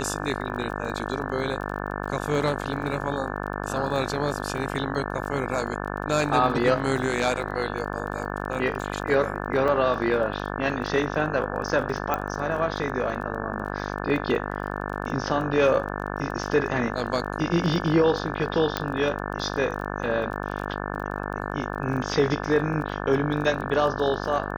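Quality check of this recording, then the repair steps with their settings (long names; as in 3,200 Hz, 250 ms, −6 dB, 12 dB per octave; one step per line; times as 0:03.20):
mains buzz 50 Hz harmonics 35 −31 dBFS
surface crackle 24 per second −34 dBFS
0:09.68: drop-out 3.8 ms
0:12.14: click −11 dBFS
0:18.77: click −9 dBFS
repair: click removal
hum removal 50 Hz, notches 35
repair the gap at 0:09.68, 3.8 ms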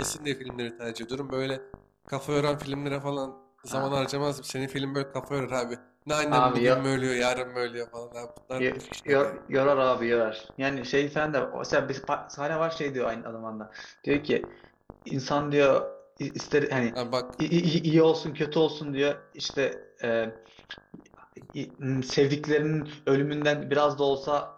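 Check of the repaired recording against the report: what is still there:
0:12.14: click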